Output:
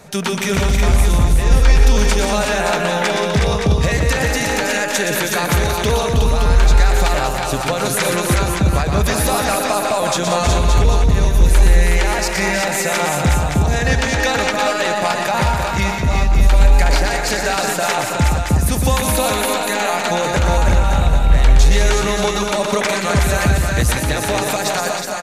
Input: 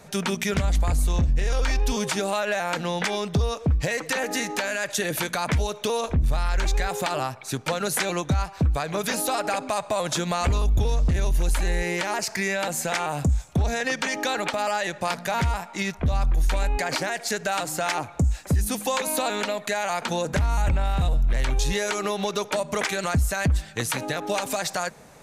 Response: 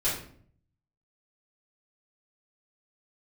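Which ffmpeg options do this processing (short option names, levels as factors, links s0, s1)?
-filter_complex "[0:a]aecho=1:1:119|179|319|367|569|790:0.501|0.316|0.447|0.562|0.447|0.188,asplit=2[s0][s1];[1:a]atrim=start_sample=2205,adelay=143[s2];[s1][s2]afir=irnorm=-1:irlink=0,volume=0.0282[s3];[s0][s3]amix=inputs=2:normalize=0,volume=1.88"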